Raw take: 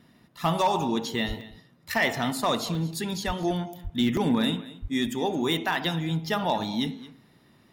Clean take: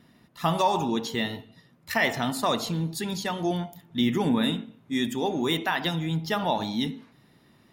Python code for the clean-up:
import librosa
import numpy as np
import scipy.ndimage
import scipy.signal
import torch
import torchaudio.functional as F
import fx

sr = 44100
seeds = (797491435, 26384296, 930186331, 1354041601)

y = fx.fix_declip(x, sr, threshold_db=-16.0)
y = fx.fix_deplosive(y, sr, at_s=(1.27, 3.26, 3.83, 4.81))
y = fx.fix_interpolate(y, sr, at_s=(1.41, 2.75, 3.43, 4.17), length_ms=1.5)
y = fx.fix_echo_inverse(y, sr, delay_ms=222, level_db=-18.0)